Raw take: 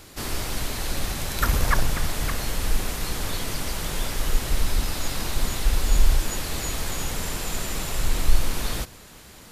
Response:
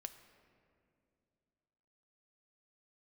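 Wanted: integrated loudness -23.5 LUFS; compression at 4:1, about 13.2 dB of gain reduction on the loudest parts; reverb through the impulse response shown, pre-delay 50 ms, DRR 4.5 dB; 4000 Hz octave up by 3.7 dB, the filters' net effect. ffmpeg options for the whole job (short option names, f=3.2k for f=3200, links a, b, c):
-filter_complex "[0:a]equalizer=f=4k:t=o:g=4.5,acompressor=threshold=-26dB:ratio=4,asplit=2[a][b];[1:a]atrim=start_sample=2205,adelay=50[c];[b][c]afir=irnorm=-1:irlink=0,volume=0dB[d];[a][d]amix=inputs=2:normalize=0,volume=7.5dB"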